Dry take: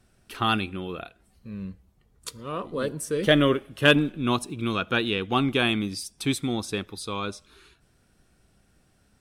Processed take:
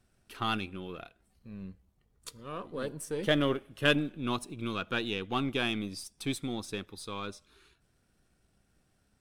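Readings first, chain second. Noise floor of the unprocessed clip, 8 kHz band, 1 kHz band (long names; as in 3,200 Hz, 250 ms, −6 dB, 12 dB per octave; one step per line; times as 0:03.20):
−64 dBFS, −7.5 dB, −7.5 dB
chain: gain on one half-wave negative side −3 dB
level −6.5 dB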